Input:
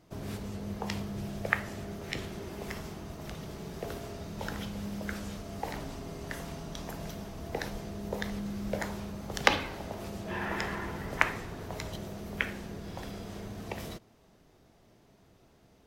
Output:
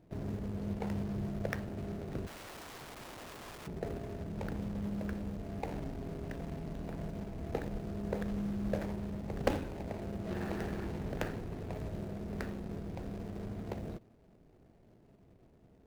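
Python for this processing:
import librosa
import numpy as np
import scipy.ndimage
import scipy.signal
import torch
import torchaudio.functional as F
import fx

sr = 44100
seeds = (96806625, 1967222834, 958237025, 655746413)

y = scipy.signal.medfilt(x, 41)
y = fx.overflow_wrap(y, sr, gain_db=44.5, at=(2.26, 3.66), fade=0.02)
y = y * librosa.db_to_amplitude(1.0)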